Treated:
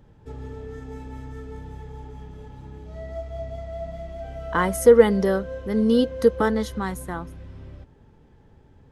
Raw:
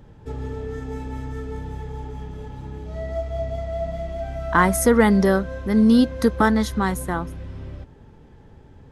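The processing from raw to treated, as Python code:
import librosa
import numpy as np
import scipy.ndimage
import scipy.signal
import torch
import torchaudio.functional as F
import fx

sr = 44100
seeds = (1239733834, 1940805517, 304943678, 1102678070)

y = fx.small_body(x, sr, hz=(480.0, 3000.0), ring_ms=45, db=13, at=(4.24, 6.78))
y = y * 10.0 ** (-6.0 / 20.0)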